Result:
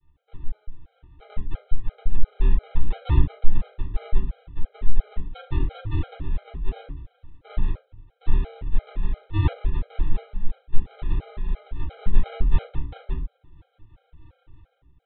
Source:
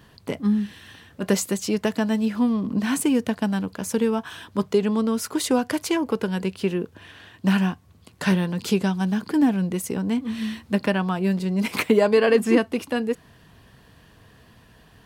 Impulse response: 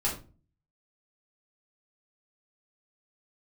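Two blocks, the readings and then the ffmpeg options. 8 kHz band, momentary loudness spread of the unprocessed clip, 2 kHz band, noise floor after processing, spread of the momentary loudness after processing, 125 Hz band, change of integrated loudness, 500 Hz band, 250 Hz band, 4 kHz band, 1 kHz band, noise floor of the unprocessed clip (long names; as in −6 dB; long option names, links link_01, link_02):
below −40 dB, 8 LU, −16.0 dB, −69 dBFS, 14 LU, +1.0 dB, −7.0 dB, −19.5 dB, −18.0 dB, −15.0 dB, −11.5 dB, −54 dBFS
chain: -filter_complex "[0:a]dynaudnorm=framelen=290:gausssize=5:maxgain=10.5dB,aresample=8000,acrusher=samples=38:mix=1:aa=0.000001,aresample=44100[link_01];[1:a]atrim=start_sample=2205[link_02];[link_01][link_02]afir=irnorm=-1:irlink=0,afftfilt=real='re*gt(sin(2*PI*2.9*pts/sr)*(1-2*mod(floor(b*sr/1024/410),2)),0)':imag='im*gt(sin(2*PI*2.9*pts/sr)*(1-2*mod(floor(b*sr/1024/410),2)),0)':win_size=1024:overlap=0.75,volume=-18dB"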